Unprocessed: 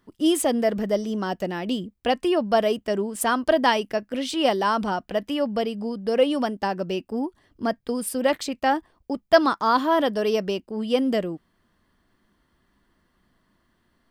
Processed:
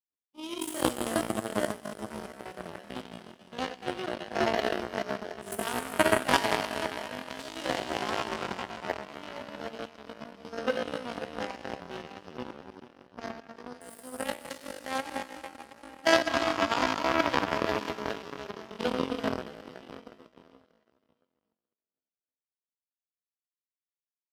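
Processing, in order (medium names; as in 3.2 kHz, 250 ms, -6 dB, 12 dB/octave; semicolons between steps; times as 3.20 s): plate-style reverb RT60 3.9 s, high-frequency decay 0.95×, DRR -5.5 dB; power-law waveshaper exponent 3; tempo 0.58×; high-pass 62 Hz; in parallel at +1 dB: compression, threshold -47 dBFS, peak gain reduction 28 dB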